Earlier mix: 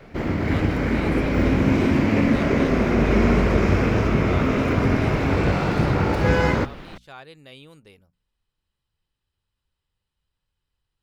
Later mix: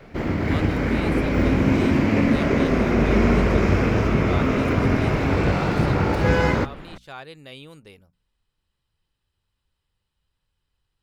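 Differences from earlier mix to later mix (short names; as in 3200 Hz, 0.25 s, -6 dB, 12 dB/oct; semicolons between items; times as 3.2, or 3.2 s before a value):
speech +3.5 dB; second sound: add high shelf 4400 Hz -11.5 dB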